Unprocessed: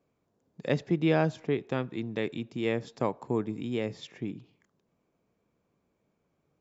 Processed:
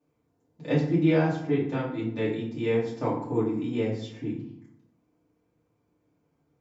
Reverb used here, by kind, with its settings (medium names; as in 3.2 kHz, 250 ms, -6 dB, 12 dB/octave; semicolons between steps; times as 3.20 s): FDN reverb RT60 0.68 s, low-frequency decay 1.45×, high-frequency decay 0.6×, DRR -8.5 dB; trim -8 dB